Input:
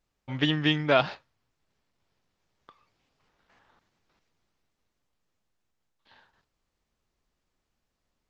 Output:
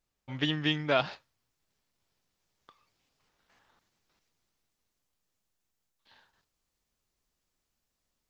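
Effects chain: high shelf 4700 Hz +6 dB, from 1.13 s +12 dB; gain -5 dB

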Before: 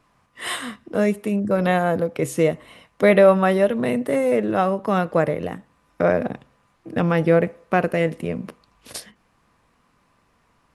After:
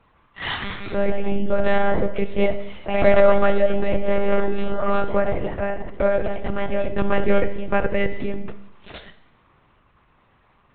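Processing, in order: echoes that change speed 0.237 s, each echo +2 st, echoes 2, each echo -6 dB; spectral repair 4.54–4.88, 470–1900 Hz both; in parallel at 0 dB: compressor, threshold -30 dBFS, peak gain reduction 20 dB; on the sum: monotone LPC vocoder at 8 kHz 200 Hz; Schroeder reverb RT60 0.85 s, combs from 27 ms, DRR 11.5 dB; gain -2.5 dB

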